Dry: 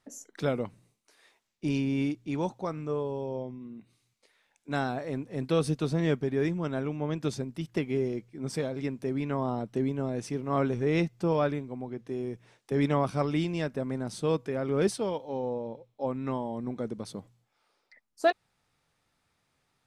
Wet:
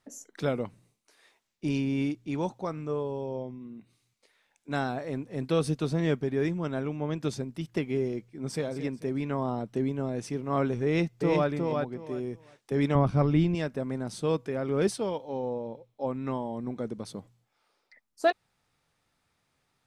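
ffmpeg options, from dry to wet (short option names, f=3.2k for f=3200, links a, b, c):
-filter_complex "[0:a]asplit=2[a][b];[b]afade=t=in:st=8.22:d=0.01,afade=t=out:st=8.66:d=0.01,aecho=0:1:220|440|660|880:0.223872|0.0895488|0.0358195|0.0143278[c];[a][c]amix=inputs=2:normalize=0,asplit=2[d][e];[e]afade=t=in:st=10.85:d=0.01,afade=t=out:st=11.48:d=0.01,aecho=0:1:360|720|1080:0.668344|0.133669|0.0267338[f];[d][f]amix=inputs=2:normalize=0,asettb=1/sr,asplit=3[g][h][i];[g]atrim=end=12.954[j];[h]atrim=start=12.95:end=13.55,asetpts=PTS-STARTPTS,afade=t=in:d=0.004:c=qsin,afade=t=out:st=0.596:d=0.004:c=qsin,aemphasis=mode=reproduction:type=bsi[k];[i]atrim=start=13.546[l];[j][k]acrossfade=d=0.004:c1=hsin:c2=qsin[m];[m][l]acrossfade=d=0.004:c1=qsin:c2=hsin"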